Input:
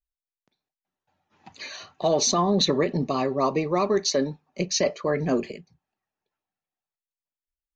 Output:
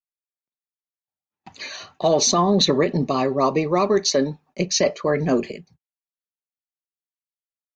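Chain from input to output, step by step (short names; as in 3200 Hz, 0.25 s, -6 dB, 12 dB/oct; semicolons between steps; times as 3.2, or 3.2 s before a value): gate -56 dBFS, range -33 dB; gain +4 dB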